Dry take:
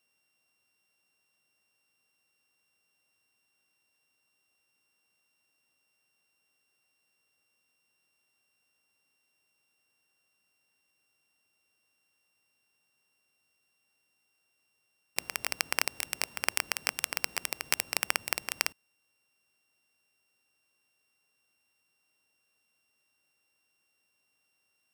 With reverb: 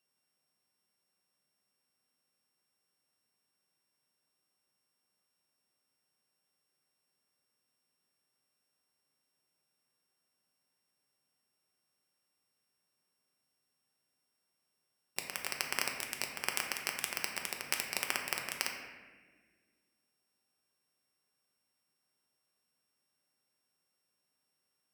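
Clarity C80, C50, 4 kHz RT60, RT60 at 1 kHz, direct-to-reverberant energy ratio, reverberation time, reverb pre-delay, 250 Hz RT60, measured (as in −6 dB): 6.0 dB, 4.5 dB, 1.0 s, 1.2 s, 1.5 dB, 1.5 s, 4 ms, 2.4 s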